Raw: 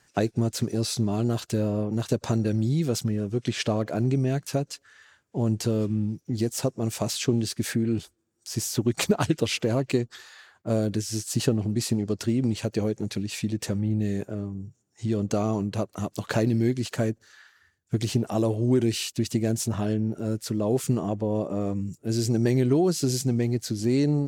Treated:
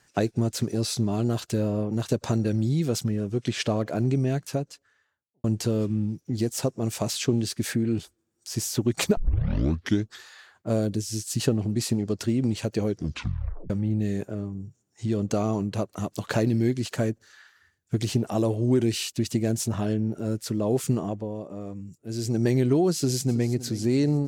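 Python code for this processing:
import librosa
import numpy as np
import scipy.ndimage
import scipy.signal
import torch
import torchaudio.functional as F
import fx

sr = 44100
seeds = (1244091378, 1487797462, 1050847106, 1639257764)

y = fx.studio_fade_out(x, sr, start_s=4.26, length_s=1.18)
y = fx.peak_eq(y, sr, hz=fx.line((10.87, 2000.0), (11.4, 540.0)), db=-9.5, octaves=1.9, at=(10.87, 11.4), fade=0.02)
y = fx.echo_throw(y, sr, start_s=22.96, length_s=0.56, ms=320, feedback_pct=50, wet_db=-15.5)
y = fx.edit(y, sr, fx.tape_start(start_s=9.17, length_s=0.95),
    fx.tape_stop(start_s=12.87, length_s=0.83),
    fx.fade_down_up(start_s=20.95, length_s=1.51, db=-8.5, fade_s=0.41), tone=tone)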